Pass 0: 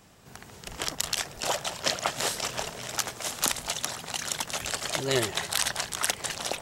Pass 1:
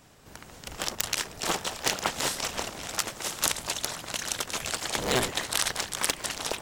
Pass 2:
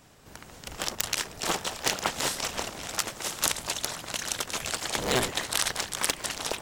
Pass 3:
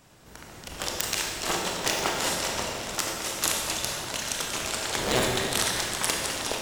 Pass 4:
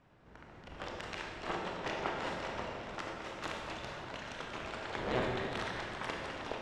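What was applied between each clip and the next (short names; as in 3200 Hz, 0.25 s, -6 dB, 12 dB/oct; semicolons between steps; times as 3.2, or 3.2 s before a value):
cycle switcher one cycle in 3, inverted
nothing audible
reverb RT60 2.2 s, pre-delay 22 ms, DRR -1 dB; gain -1 dB
LPF 2200 Hz 12 dB/oct; gain -7.5 dB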